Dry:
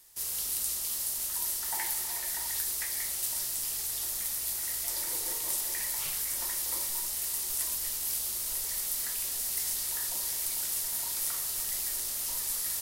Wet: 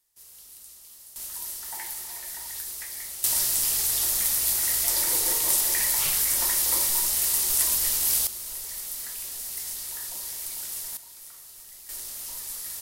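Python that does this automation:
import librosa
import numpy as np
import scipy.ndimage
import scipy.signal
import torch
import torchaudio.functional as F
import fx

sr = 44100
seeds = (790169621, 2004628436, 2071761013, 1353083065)

y = fx.gain(x, sr, db=fx.steps((0.0, -15.0), (1.16, -3.0), (3.24, 9.0), (8.27, -2.0), (10.97, -13.0), (11.89, -3.0)))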